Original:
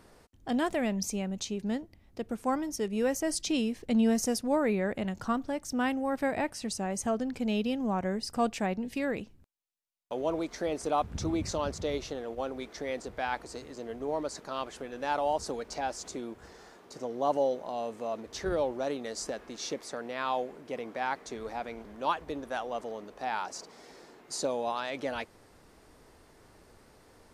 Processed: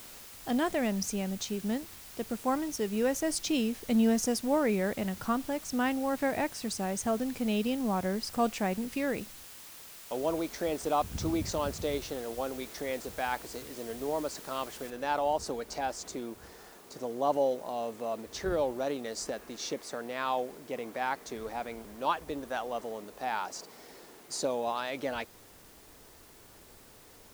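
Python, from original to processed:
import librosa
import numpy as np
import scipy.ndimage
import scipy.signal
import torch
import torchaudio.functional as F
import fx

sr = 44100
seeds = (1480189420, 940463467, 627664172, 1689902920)

y = fx.noise_floor_step(x, sr, seeds[0], at_s=14.9, before_db=-49, after_db=-58, tilt_db=0.0)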